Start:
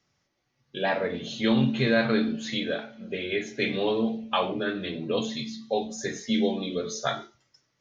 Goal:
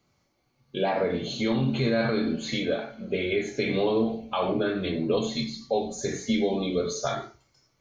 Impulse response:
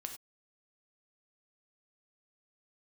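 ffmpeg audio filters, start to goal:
-filter_complex "[0:a]asubboost=boost=2.5:cutoff=99,alimiter=limit=-20.5dB:level=0:latency=1:release=90,asplit=2[a][b];[b]asuperstop=centerf=3100:order=20:qfactor=1.9[c];[1:a]atrim=start_sample=2205,highshelf=f=4.7k:g=3[d];[c][d]afir=irnorm=-1:irlink=0,volume=3dB[e];[a][e]amix=inputs=2:normalize=0"

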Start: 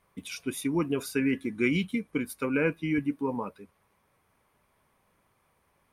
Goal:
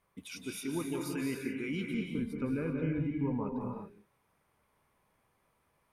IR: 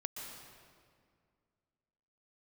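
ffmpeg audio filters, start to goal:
-filter_complex "[0:a]asettb=1/sr,asplit=3[a][b][c];[a]atrim=end=1.944[d];[b]atrim=start=1.94:end=3.61,asetpts=PTS-STARTPTS,afade=t=in:d=0.004:c=qsin,afade=t=out:st=1.666:d=0.004:c=qsin,aemphasis=mode=reproduction:type=riaa[e];[c]atrim=start=3.606[f];[d][e]acrossfade=d=0.004:c1=hsin:c2=qsin[g];[g][f]acrossfade=d=0.004:c1=qsin:c2=hsin,alimiter=limit=-21.5dB:level=0:latency=1:release=22[h];[1:a]atrim=start_sample=2205,afade=t=out:st=0.34:d=0.01,atrim=end_sample=15435,asetrate=31752,aresample=44100[i];[h][i]afir=irnorm=-1:irlink=0,volume=-5dB"

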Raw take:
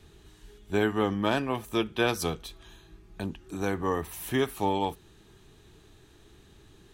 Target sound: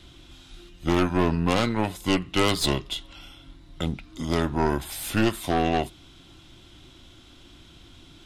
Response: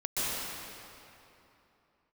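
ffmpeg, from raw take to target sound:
-af "equalizer=f=4.5k:t=o:w=0.43:g=13.5,asetrate=37044,aresample=44100,aeval=exprs='0.282*(cos(1*acos(clip(val(0)/0.282,-1,1)))-cos(1*PI/2))+0.0501*(cos(4*acos(clip(val(0)/0.282,-1,1)))-cos(4*PI/2))+0.0282*(cos(5*acos(clip(val(0)/0.282,-1,1)))-cos(5*PI/2))+0.0794*(cos(6*acos(clip(val(0)/0.282,-1,1)))-cos(6*PI/2))+0.00708*(cos(8*acos(clip(val(0)/0.282,-1,1)))-cos(8*PI/2))':c=same,volume=1dB"

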